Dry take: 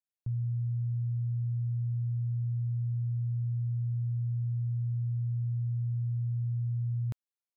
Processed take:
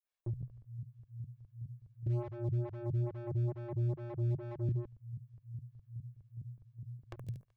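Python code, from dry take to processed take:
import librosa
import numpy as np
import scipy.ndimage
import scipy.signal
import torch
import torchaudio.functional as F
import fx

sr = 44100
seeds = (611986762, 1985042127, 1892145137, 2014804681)

y = fx.hum_notches(x, sr, base_hz=60, count=2)
y = y + 0.42 * np.pad(y, (int(1.8 * sr / 1000.0), 0))[:len(y)]
y = fx.echo_feedback(y, sr, ms=72, feedback_pct=40, wet_db=-7.0)
y = fx.volume_shaper(y, sr, bpm=145, per_beat=2, depth_db=-19, release_ms=68.0, shape='fast start')
y = fx.low_shelf_res(y, sr, hz=180.0, db=12.0, q=3.0, at=(2.06, 4.69))
y = y + 10.0 ** (-7.0 / 20.0) * np.pad(y, (int(164 * sr / 1000.0), 0))[:len(y)]
y = np.clip(y, -10.0 ** (-34.0 / 20.0), 10.0 ** (-34.0 / 20.0))
y = fx.stagger_phaser(y, sr, hz=2.3)
y = F.gain(torch.from_numpy(y), 4.5).numpy()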